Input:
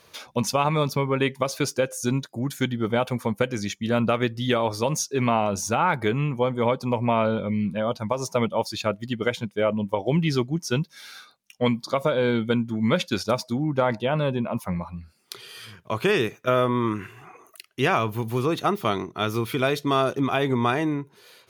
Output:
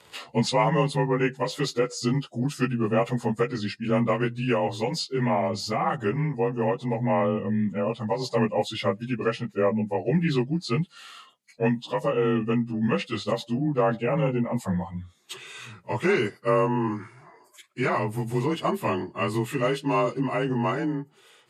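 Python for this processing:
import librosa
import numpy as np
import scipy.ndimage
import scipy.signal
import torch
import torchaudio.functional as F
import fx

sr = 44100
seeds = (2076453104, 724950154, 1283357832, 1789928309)

y = fx.partial_stretch(x, sr, pct=91)
y = fx.rider(y, sr, range_db=10, speed_s=2.0)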